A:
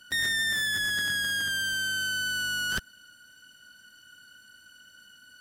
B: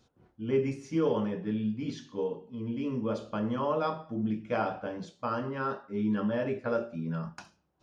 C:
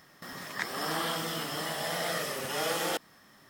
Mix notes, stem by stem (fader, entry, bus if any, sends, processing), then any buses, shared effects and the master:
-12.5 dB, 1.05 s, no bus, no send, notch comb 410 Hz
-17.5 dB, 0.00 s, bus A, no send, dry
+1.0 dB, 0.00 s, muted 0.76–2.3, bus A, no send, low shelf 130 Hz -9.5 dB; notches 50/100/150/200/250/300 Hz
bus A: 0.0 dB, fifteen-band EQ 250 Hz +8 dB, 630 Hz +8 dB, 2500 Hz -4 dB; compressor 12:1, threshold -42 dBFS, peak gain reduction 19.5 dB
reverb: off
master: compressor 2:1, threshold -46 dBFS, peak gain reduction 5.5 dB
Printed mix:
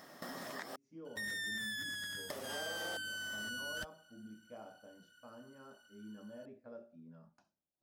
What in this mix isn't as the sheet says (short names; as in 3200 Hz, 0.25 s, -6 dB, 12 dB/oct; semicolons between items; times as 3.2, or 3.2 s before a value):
stem B -17.5 dB -> -27.0 dB; master: missing compressor 2:1, threshold -46 dBFS, peak gain reduction 5.5 dB